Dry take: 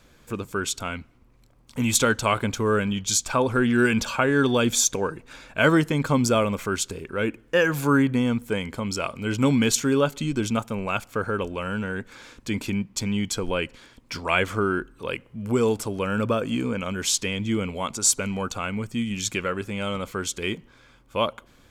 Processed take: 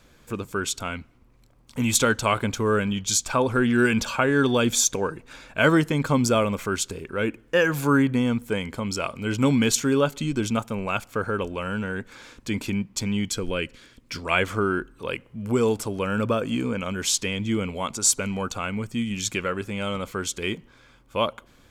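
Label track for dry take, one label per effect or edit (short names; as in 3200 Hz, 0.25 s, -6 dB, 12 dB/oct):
13.290000	14.310000	bell 850 Hz -8 dB 0.81 oct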